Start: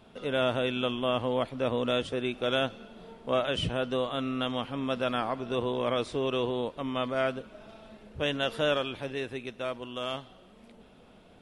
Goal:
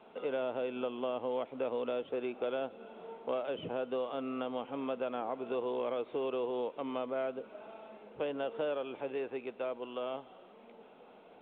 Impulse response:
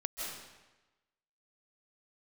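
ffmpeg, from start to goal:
-filter_complex "[0:a]highpass=320,equalizer=f=460:t=q:w=4:g=4,equalizer=f=840:t=q:w=4:g=5,equalizer=f=1800:t=q:w=4:g=-7,lowpass=f=2800:w=0.5412,lowpass=f=2800:w=1.3066,acrossover=split=670|1500[s0][s1][s2];[s0]acompressor=threshold=0.02:ratio=4[s3];[s1]acompressor=threshold=0.00447:ratio=4[s4];[s2]acompressor=threshold=0.00282:ratio=4[s5];[s3][s4][s5]amix=inputs=3:normalize=0" -ar 8000 -c:a pcm_alaw

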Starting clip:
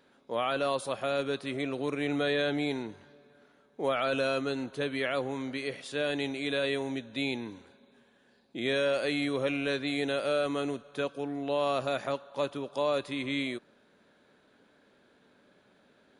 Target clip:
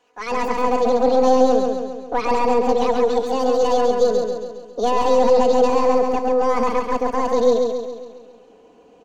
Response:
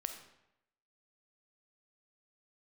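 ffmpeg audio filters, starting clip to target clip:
-filter_complex "[0:a]aemphasis=mode=reproduction:type=50kf,aecho=1:1:7.3:0.78,aeval=exprs='(tanh(10*val(0)+0.35)-tanh(0.35))/10':c=same,asetrate=78939,aresample=44100,aecho=1:1:136|272|408|544|680|816|952:0.631|0.334|0.177|0.0939|0.0498|0.0264|0.014,acrossover=split=600[s0][s1];[s0]dynaudnorm=f=190:g=3:m=6.68[s2];[s2][s1]amix=inputs=2:normalize=0"

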